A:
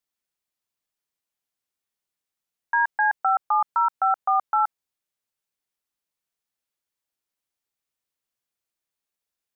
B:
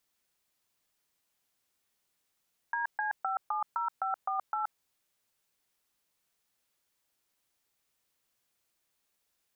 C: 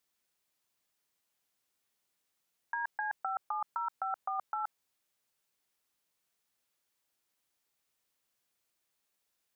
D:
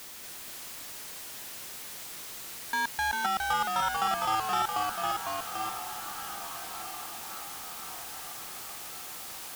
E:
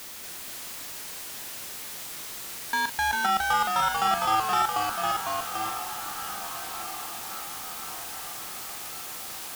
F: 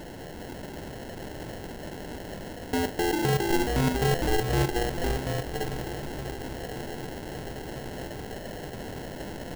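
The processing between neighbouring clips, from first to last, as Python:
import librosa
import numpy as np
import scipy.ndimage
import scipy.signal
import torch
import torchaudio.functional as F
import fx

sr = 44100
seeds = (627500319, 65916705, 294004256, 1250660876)

y1 = fx.over_compress(x, sr, threshold_db=-30.0, ratio=-1.0)
y1 = F.gain(torch.from_numpy(y1), -2.0).numpy()
y2 = fx.low_shelf(y1, sr, hz=95.0, db=-5.0)
y2 = F.gain(torch.from_numpy(y2), -2.5).numpy()
y3 = fx.power_curve(y2, sr, exponent=0.35)
y3 = fx.echo_pitch(y3, sr, ms=234, semitones=-1, count=2, db_per_echo=-3.0)
y3 = fx.echo_diffused(y3, sr, ms=1269, feedback_pct=56, wet_db=-11)
y4 = fx.doubler(y3, sr, ms=39.0, db=-11.0)
y4 = F.gain(torch.from_numpy(y4), 3.5).numpy()
y5 = fx.sample_hold(y4, sr, seeds[0], rate_hz=1200.0, jitter_pct=0)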